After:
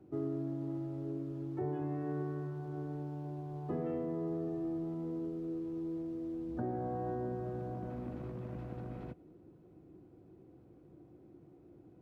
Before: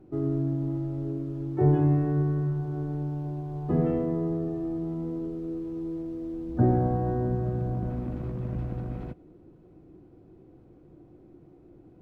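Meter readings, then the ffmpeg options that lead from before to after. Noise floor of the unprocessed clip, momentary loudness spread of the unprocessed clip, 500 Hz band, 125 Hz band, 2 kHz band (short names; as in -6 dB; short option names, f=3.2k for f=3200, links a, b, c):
-54 dBFS, 11 LU, -8.0 dB, -14.5 dB, -7.0 dB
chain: -filter_complex "[0:a]highpass=66,acrossover=split=270[a][b];[a]acompressor=threshold=-38dB:ratio=6[c];[b]alimiter=level_in=1dB:limit=-24dB:level=0:latency=1:release=418,volume=-1dB[d];[c][d]amix=inputs=2:normalize=0,volume=-5dB"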